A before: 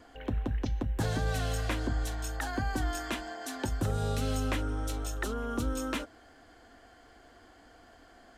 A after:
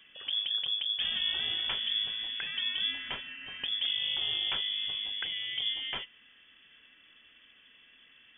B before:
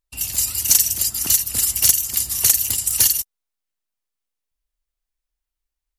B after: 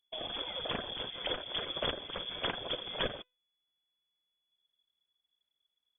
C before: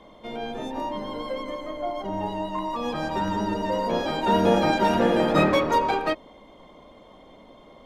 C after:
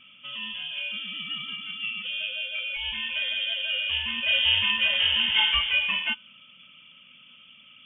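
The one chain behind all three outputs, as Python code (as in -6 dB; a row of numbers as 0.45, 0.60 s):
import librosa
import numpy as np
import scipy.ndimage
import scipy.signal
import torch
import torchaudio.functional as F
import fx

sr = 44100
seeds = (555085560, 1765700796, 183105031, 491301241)

y = fx.freq_invert(x, sr, carrier_hz=3400)
y = fx.comb_fb(y, sr, f0_hz=500.0, decay_s=0.31, harmonics='all', damping=0.0, mix_pct=30)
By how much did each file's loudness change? +3.0, -20.0, +0.5 LU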